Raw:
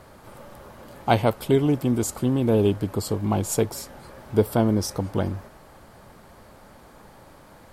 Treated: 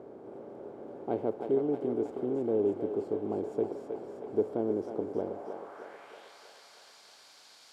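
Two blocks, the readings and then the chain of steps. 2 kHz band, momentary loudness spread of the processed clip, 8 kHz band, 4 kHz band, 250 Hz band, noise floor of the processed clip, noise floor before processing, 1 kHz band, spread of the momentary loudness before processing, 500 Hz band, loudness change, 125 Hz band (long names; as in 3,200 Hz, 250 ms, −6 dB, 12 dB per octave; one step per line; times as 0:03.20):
below −15 dB, 18 LU, below −25 dB, below −15 dB, −10.0 dB, −57 dBFS, −50 dBFS, −13.0 dB, 9 LU, −5.5 dB, −9.5 dB, −21.5 dB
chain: compressor on every frequency bin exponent 0.6
band-pass filter sweep 380 Hz → 4,500 Hz, 0:05.15–0:06.39
feedback echo with a high-pass in the loop 317 ms, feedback 76%, high-pass 540 Hz, level −4.5 dB
level −7.5 dB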